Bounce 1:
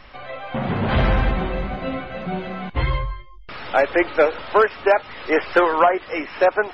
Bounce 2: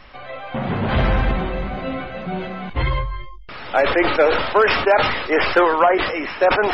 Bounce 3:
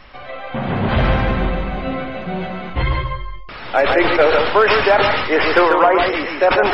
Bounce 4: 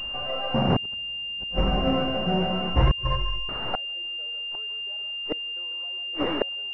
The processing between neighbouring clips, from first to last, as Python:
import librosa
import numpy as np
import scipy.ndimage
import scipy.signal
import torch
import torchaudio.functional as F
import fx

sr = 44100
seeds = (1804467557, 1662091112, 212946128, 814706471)

y1 = fx.sustainer(x, sr, db_per_s=48.0)
y2 = y1 + 10.0 ** (-5.0 / 20.0) * np.pad(y1, (int(141 * sr / 1000.0), 0))[:len(y1)]
y2 = y2 * librosa.db_to_amplitude(1.5)
y3 = fx.gate_flip(y2, sr, shuts_db=-9.0, range_db=-41)
y3 = fx.pwm(y3, sr, carrier_hz=2800.0)